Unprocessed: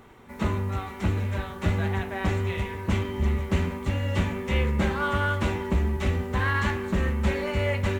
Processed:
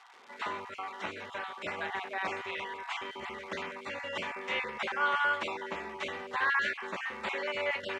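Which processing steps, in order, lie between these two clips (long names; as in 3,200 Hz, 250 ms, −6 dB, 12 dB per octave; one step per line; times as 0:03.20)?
time-frequency cells dropped at random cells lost 21%
surface crackle 260 per second −41 dBFS
band-pass filter 670–4,800 Hz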